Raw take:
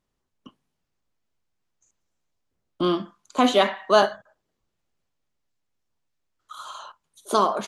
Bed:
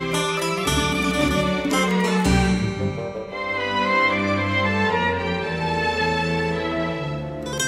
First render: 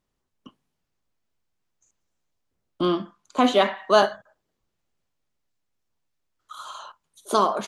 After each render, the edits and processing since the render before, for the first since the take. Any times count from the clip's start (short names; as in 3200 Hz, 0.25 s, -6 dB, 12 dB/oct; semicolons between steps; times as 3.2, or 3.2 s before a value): 2.86–3.78 high shelf 4900 Hz -5.5 dB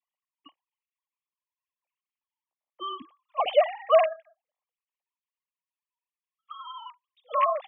sine-wave speech; fixed phaser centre 1500 Hz, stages 6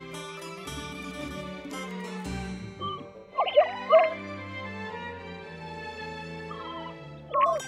add bed -16.5 dB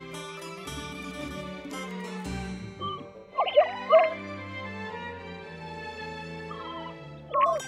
nothing audible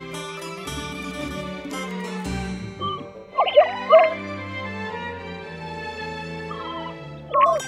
gain +6.5 dB; limiter -3 dBFS, peak gain reduction 1.5 dB